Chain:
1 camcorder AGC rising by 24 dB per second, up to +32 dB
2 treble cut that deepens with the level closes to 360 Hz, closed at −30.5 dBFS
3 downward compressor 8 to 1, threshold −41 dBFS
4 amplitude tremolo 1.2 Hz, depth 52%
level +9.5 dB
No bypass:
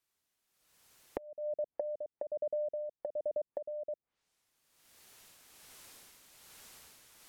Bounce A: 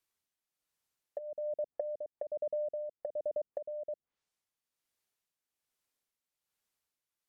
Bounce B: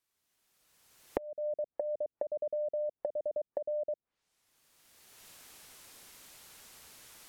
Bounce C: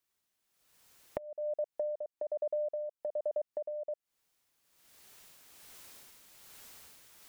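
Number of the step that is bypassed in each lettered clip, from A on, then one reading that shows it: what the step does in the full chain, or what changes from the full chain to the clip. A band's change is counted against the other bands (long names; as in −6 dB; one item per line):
1, change in crest factor −3.0 dB
4, change in momentary loudness spread −3 LU
2, change in integrated loudness +1.5 LU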